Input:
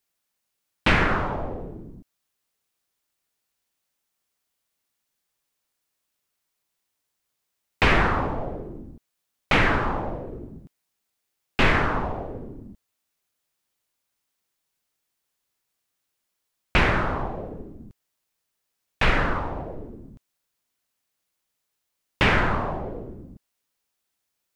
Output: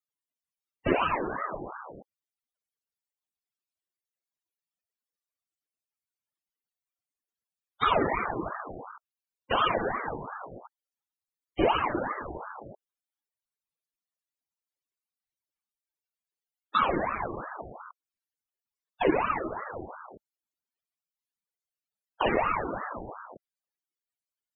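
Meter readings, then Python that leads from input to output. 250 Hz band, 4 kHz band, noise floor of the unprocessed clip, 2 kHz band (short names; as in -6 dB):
-4.5 dB, -7.5 dB, -80 dBFS, -10.0 dB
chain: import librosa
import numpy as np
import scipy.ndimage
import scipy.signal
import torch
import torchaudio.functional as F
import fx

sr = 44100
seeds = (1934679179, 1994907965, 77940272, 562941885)

y = fx.spec_topn(x, sr, count=16)
y = fx.ring_lfo(y, sr, carrier_hz=800.0, swing_pct=60, hz=2.8)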